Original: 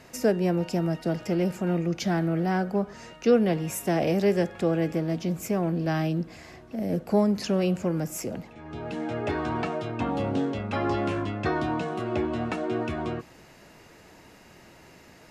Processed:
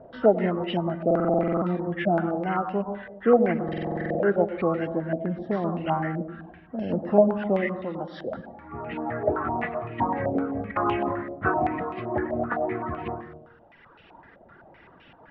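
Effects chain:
hearing-aid frequency compression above 1,000 Hz 1.5 to 1
0:10.71–0:11.42: noise gate with hold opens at −18 dBFS
reverb reduction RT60 1.7 s
0:07.66–0:08.33: low-shelf EQ 450 Hz −6.5 dB
convolution reverb RT60 1.0 s, pre-delay 93 ms, DRR 8.5 dB
buffer that repeats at 0:01.06/0:03.64, samples 2,048, times 11
low-pass on a step sequencer 7.8 Hz 630–2,700 Hz

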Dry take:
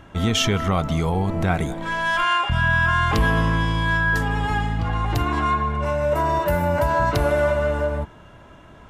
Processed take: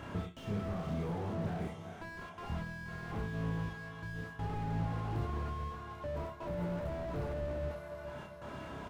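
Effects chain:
high-pass filter 45 Hz 24 dB per octave
low-shelf EQ 85 Hz −7.5 dB
downward compressor 10 to 1, threshold −33 dBFS, peak gain reduction 17 dB
gate pattern "x.xxxxxxx.." 82 BPM −60 dB
double-tracking delay 29 ms −2 dB
feedback delay with all-pass diffusion 456 ms, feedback 49%, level −14.5 dB
on a send at −5.5 dB: convolution reverb RT60 0.30 s, pre-delay 30 ms
on the sum: slew-rate limiting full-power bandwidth 7 Hz

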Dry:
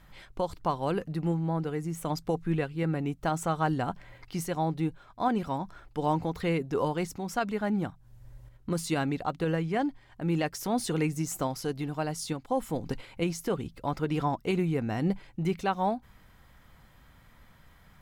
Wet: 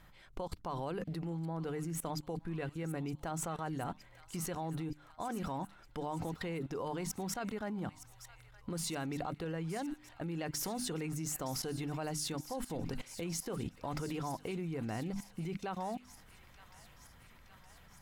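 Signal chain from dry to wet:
mains-hum notches 50/100/150/200/250/300 Hz
output level in coarse steps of 21 dB
delay with a high-pass on its return 917 ms, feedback 69%, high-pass 1,500 Hz, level −13 dB
level +4 dB

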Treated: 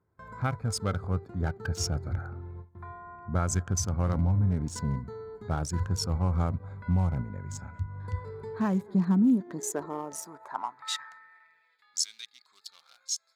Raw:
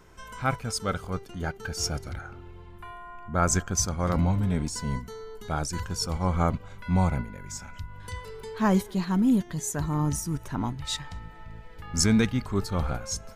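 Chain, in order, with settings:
adaptive Wiener filter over 15 samples
noise gate with hold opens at −37 dBFS
downward compressor 6 to 1, threshold −27 dBFS, peak gain reduction 9.5 dB
high-pass filter sweep 91 Hz → 3,900 Hz, 0:08.39–0:11.99

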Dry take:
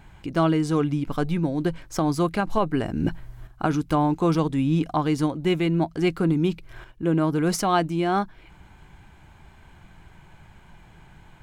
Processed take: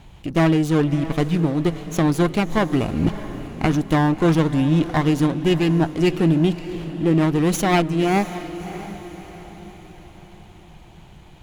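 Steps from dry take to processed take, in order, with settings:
lower of the sound and its delayed copy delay 0.3 ms
feedback delay with all-pass diffusion 625 ms, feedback 47%, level −13 dB
level +4 dB

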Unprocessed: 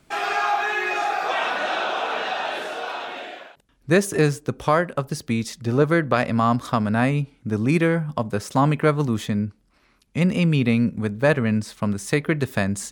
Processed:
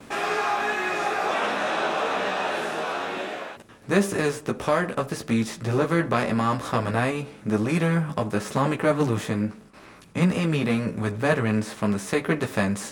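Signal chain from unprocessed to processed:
compressor on every frequency bin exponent 0.6
noise gate with hold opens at −33 dBFS
multi-voice chorus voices 6, 0.23 Hz, delay 14 ms, depth 4.7 ms
level −3.5 dB

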